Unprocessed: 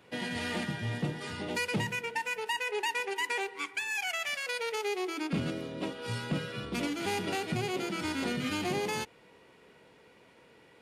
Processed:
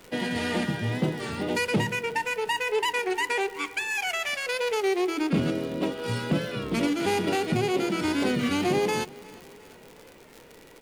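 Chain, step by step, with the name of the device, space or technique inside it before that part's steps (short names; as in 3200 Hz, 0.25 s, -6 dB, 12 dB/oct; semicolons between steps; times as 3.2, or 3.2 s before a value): bell 360 Hz +5 dB 2.3 oct; warped LP (record warp 33 1/3 rpm, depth 100 cents; crackle 87/s -38 dBFS; pink noise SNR 33 dB); feedback echo 0.357 s, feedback 51%, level -22 dB; gain +4 dB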